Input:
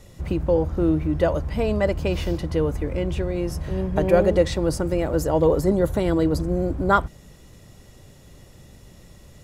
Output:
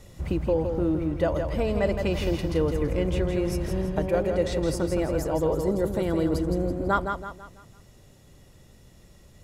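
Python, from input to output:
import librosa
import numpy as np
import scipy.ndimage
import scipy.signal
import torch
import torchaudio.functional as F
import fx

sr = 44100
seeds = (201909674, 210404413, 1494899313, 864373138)

p1 = fx.rider(x, sr, range_db=4, speed_s=0.5)
p2 = p1 + fx.echo_feedback(p1, sr, ms=165, feedback_pct=40, wet_db=-6.0, dry=0)
y = p2 * 10.0 ** (-4.5 / 20.0)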